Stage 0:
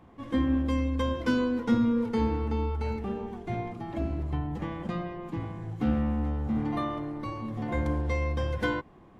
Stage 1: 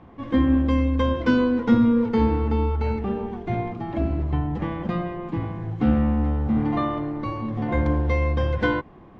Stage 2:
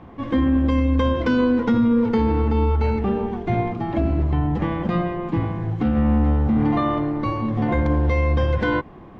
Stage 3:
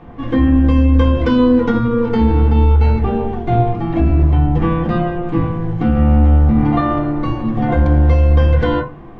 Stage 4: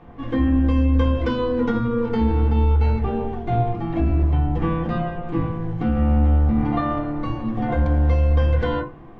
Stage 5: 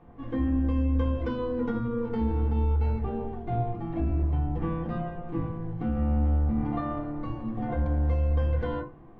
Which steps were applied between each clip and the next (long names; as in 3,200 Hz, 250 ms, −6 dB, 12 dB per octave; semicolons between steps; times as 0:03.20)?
high-frequency loss of the air 150 metres; level +7 dB
brickwall limiter −16.5 dBFS, peak gain reduction 9 dB; level +5 dB
convolution reverb RT60 0.30 s, pre-delay 3 ms, DRR 0 dB; level +1.5 dB
mains-hum notches 50/100/150/200/250/300/350 Hz; level −6 dB
high-shelf EQ 2,000 Hz −8.5 dB; level −7.5 dB